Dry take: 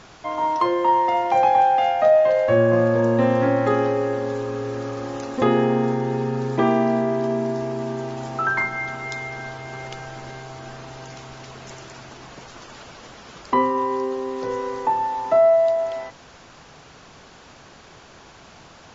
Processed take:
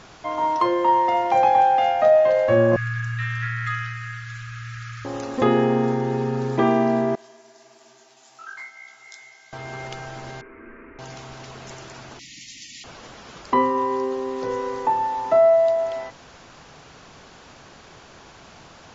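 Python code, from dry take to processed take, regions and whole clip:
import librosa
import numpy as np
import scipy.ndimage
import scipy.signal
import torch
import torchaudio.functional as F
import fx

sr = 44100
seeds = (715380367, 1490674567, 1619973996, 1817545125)

y = fx.chain(x, sr, fx.cheby1_bandstop(low_hz=120.0, high_hz=1300.0, order=5),
    fx.peak_eq(hz=2000.0, db=5.5, octaves=0.95), at=(2.76, 5.05))
y = fx.chain(y, sr, fx.highpass(hz=43.0, slope=12),
    fx.differentiator(),
    fx.detune_double(cents=52), at=(7.15, 9.53))
y = fx.chain(y, sr, fx.steep_lowpass(hz=2400.0, slope=72),
    fx.fixed_phaser(hz=310.0, stages=4), at=(10.41, 10.99))
y = fx.chain(y, sr, fx.brickwall_bandstop(low_hz=330.0, high_hz=1800.0),
    fx.tilt_eq(slope=3.0), at=(12.19, 12.84))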